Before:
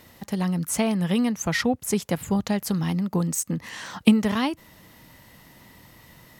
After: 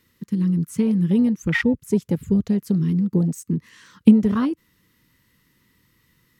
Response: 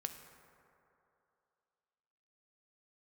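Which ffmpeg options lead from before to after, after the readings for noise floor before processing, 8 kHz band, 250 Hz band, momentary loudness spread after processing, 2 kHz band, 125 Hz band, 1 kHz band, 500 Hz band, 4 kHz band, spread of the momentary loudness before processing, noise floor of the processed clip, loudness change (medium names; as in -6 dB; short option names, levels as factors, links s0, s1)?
-52 dBFS, -11.5 dB, +5.0 dB, 11 LU, +1.5 dB, +5.0 dB, -7.0 dB, +1.5 dB, no reading, 9 LU, -64 dBFS, +4.0 dB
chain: -af "asuperstop=centerf=710:order=4:qfactor=1.2,afwtdn=0.0447,volume=1.78"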